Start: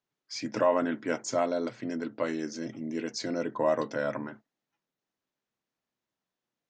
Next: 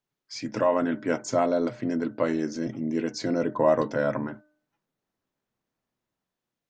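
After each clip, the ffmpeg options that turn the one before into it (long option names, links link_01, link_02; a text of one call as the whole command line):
ffmpeg -i in.wav -filter_complex "[0:a]lowshelf=frequency=110:gain=9.5,bandreject=frequency=302.2:width_type=h:width=4,bandreject=frequency=604.4:width_type=h:width=4,bandreject=frequency=906.6:width_type=h:width=4,bandreject=frequency=1208.8:width_type=h:width=4,bandreject=frequency=1511:width_type=h:width=4,acrossover=split=1600[link_01][link_02];[link_01]dynaudnorm=framelen=380:gausssize=5:maxgain=5dB[link_03];[link_03][link_02]amix=inputs=2:normalize=0" out.wav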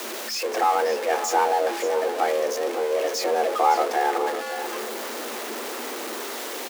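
ffmpeg -i in.wav -filter_complex "[0:a]aeval=exprs='val(0)+0.5*0.0531*sgn(val(0))':channel_layout=same,afreqshift=220,asplit=2[link_01][link_02];[link_02]aecho=0:1:559:0.266[link_03];[link_01][link_03]amix=inputs=2:normalize=0" out.wav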